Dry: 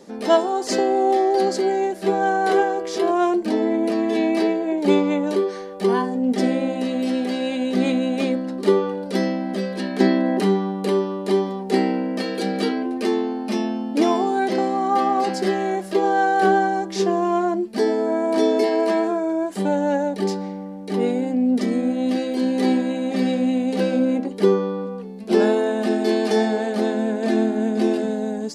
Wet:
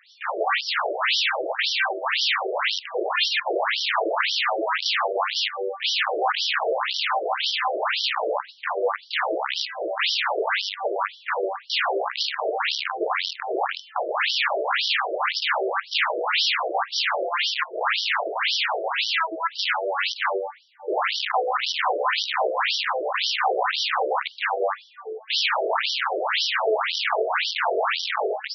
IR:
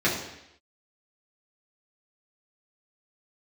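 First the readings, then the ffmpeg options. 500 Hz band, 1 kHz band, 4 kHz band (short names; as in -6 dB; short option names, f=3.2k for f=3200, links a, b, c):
-7.0 dB, -1.0 dB, +11.5 dB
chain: -filter_complex "[0:a]bandreject=f=60:t=h:w=6,bandreject=f=120:t=h:w=6,bandreject=f=180:t=h:w=6,bandreject=f=240:t=h:w=6,bandreject=f=300:t=h:w=6,aeval=exprs='(mod(8.91*val(0)+1,2)-1)/8.91':c=same,acontrast=27,asplit=2[a][b];[1:a]atrim=start_sample=2205,adelay=5[c];[b][c]afir=irnorm=-1:irlink=0,volume=-28dB[d];[a][d]amix=inputs=2:normalize=0,afftfilt=real='re*between(b*sr/1024,480*pow(4200/480,0.5+0.5*sin(2*PI*1.9*pts/sr))/1.41,480*pow(4200/480,0.5+0.5*sin(2*PI*1.9*pts/sr))*1.41)':imag='im*between(b*sr/1024,480*pow(4200/480,0.5+0.5*sin(2*PI*1.9*pts/sr))/1.41,480*pow(4200/480,0.5+0.5*sin(2*PI*1.9*pts/sr))*1.41)':win_size=1024:overlap=0.75,volume=2.5dB"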